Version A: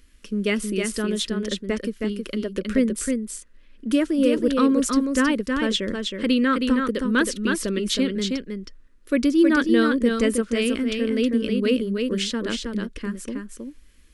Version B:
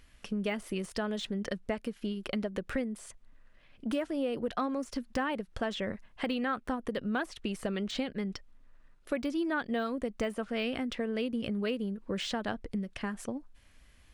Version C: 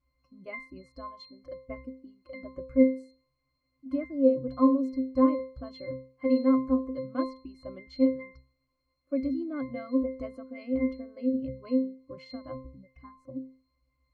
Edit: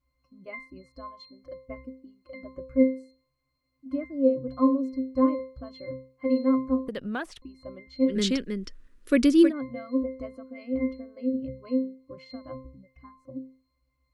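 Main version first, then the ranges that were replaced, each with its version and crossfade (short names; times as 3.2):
C
6.88–7.42 from B
8.12–9.48 from A, crossfade 0.10 s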